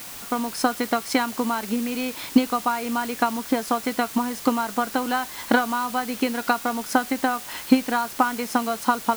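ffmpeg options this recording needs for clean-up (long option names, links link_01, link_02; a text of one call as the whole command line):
ffmpeg -i in.wav -af "afftdn=noise_reduction=30:noise_floor=-38" out.wav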